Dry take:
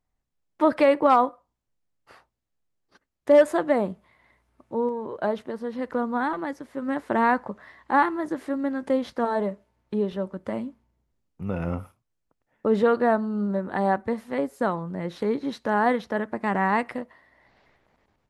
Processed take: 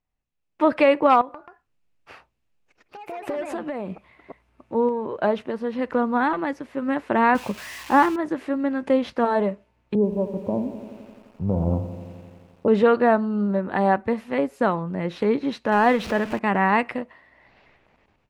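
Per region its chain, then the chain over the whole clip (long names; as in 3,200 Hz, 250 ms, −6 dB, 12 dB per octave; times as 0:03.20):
0:01.21–0:04.75: downward compressor 12 to 1, threshold −30 dBFS + delay with pitch and tempo change per echo 133 ms, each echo +3 semitones, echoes 2, each echo −6 dB
0:07.35–0:08.16: spike at every zero crossing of −22.5 dBFS + spectral tilt −2 dB per octave
0:09.95–0:12.68: Chebyshev low-pass filter 1,000 Hz, order 5 + parametric band 76 Hz +5 dB 2 octaves + feedback echo at a low word length 86 ms, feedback 80%, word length 9 bits, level −12.5 dB
0:15.72–0:16.39: converter with a step at zero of −35.5 dBFS + upward compression, threshold −28 dBFS
whole clip: parametric band 2,600 Hz +8 dB 0.4 octaves; automatic gain control gain up to 8 dB; high-shelf EQ 7,900 Hz −10.5 dB; level −3.5 dB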